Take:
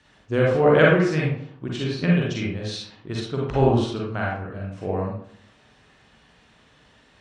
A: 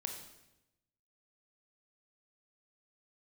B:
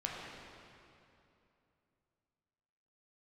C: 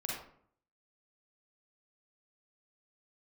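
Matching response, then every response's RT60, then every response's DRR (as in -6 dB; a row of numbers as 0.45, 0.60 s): C; 0.90, 2.8, 0.60 s; 3.0, -3.5, -4.0 dB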